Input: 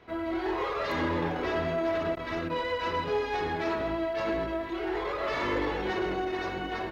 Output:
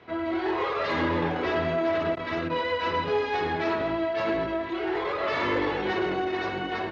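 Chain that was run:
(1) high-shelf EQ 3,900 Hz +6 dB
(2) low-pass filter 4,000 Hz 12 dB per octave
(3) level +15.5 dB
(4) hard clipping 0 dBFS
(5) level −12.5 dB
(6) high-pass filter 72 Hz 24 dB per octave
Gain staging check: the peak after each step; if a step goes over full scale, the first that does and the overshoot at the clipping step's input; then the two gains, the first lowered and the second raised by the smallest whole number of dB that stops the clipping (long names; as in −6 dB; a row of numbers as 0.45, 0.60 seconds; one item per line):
−20.0, −20.0, −4.5, −4.5, −17.0, −15.5 dBFS
no step passes full scale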